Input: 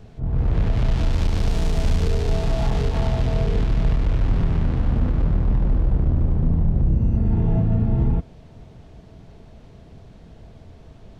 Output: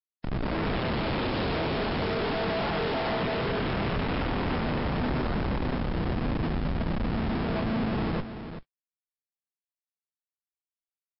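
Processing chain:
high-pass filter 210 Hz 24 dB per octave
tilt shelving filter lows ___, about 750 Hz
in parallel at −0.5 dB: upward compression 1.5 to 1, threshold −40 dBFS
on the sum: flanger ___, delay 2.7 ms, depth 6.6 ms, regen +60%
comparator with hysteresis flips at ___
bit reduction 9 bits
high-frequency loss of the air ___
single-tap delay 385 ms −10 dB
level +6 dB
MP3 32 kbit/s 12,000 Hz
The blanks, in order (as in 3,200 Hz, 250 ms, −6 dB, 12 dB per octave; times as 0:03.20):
−7.5 dB, 0.46 Hz, −32.5 dBFS, 160 metres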